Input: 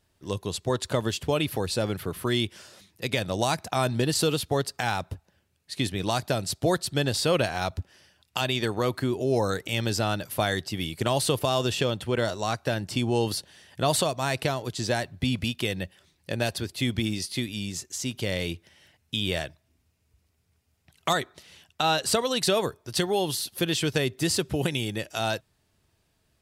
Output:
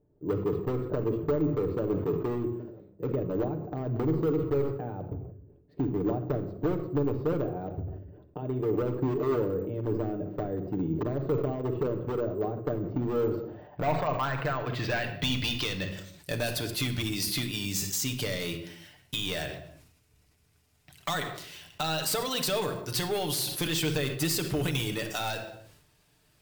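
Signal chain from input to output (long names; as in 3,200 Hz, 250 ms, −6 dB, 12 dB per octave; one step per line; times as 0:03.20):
low-shelf EQ 450 Hz −4.5 dB
downward compressor 4 to 1, threshold −32 dBFS, peak gain reduction 10.5 dB
low-pass filter sweep 400 Hz → 13,000 Hz, 0:13.07–0:16.58
hard clipping −29 dBFS, distortion −12 dB
on a send at −4 dB: convolution reverb, pre-delay 7 ms
on the sum: bad sample-rate conversion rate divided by 2×, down filtered, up hold
level that may fall only so fast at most 61 dB per second
level +4 dB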